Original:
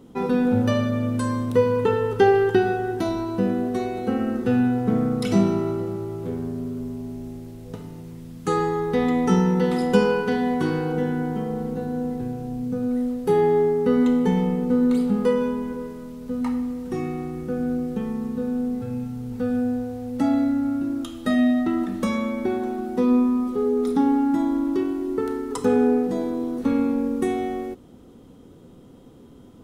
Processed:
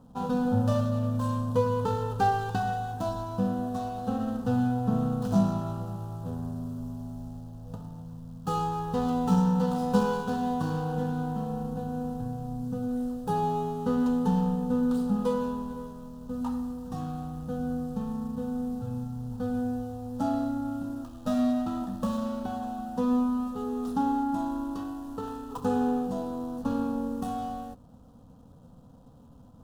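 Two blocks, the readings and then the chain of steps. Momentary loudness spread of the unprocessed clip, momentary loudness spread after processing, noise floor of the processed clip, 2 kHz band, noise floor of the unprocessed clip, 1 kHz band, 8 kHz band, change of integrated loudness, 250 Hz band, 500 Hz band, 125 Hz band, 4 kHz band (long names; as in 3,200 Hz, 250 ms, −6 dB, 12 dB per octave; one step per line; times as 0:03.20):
11 LU, 11 LU, −52 dBFS, −10.5 dB, −47 dBFS, −2.0 dB, can't be measured, −6.5 dB, −6.5 dB, −10.5 dB, −2.0 dB, −7.5 dB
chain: running median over 25 samples
phaser with its sweep stopped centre 890 Hz, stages 4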